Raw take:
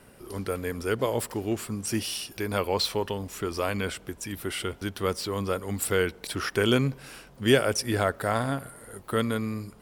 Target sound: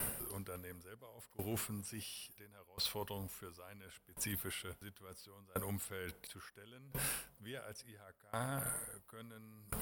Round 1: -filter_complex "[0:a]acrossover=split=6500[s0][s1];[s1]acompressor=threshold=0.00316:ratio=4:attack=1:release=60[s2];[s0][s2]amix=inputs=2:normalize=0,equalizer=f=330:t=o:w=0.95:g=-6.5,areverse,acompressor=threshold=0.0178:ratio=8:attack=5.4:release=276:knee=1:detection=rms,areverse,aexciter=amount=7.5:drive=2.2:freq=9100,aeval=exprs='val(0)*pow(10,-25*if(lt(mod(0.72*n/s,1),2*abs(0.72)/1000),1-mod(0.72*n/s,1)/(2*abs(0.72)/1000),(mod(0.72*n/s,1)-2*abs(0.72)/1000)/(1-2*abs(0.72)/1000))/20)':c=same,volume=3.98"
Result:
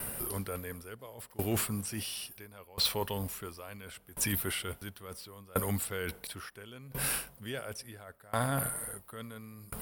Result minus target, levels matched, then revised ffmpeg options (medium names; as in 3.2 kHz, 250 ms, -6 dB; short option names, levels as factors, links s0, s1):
compression: peak gain reduction -9 dB
-filter_complex "[0:a]acrossover=split=6500[s0][s1];[s1]acompressor=threshold=0.00316:ratio=4:attack=1:release=60[s2];[s0][s2]amix=inputs=2:normalize=0,equalizer=f=330:t=o:w=0.95:g=-6.5,areverse,acompressor=threshold=0.00531:ratio=8:attack=5.4:release=276:knee=1:detection=rms,areverse,aexciter=amount=7.5:drive=2.2:freq=9100,aeval=exprs='val(0)*pow(10,-25*if(lt(mod(0.72*n/s,1),2*abs(0.72)/1000),1-mod(0.72*n/s,1)/(2*abs(0.72)/1000),(mod(0.72*n/s,1)-2*abs(0.72)/1000)/(1-2*abs(0.72)/1000))/20)':c=same,volume=3.98"